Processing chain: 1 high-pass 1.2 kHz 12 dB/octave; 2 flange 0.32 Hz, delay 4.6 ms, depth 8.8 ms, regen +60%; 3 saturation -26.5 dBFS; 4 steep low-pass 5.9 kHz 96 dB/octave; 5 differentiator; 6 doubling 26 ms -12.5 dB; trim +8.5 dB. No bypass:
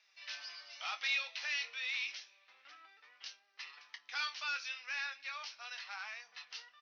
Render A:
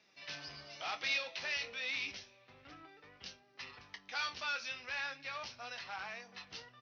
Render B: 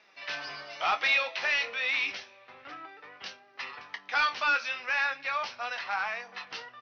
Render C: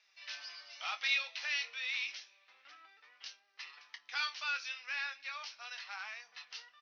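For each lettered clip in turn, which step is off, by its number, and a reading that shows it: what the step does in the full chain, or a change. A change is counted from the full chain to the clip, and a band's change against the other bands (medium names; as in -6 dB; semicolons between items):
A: 1, momentary loudness spread change +3 LU; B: 5, 500 Hz band +11.0 dB; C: 3, distortion -18 dB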